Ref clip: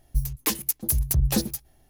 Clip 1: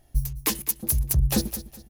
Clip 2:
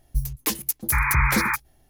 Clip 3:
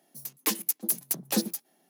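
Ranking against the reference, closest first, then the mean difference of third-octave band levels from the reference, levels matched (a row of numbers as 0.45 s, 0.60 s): 1, 3, 2; 2.5 dB, 3.5 dB, 6.0 dB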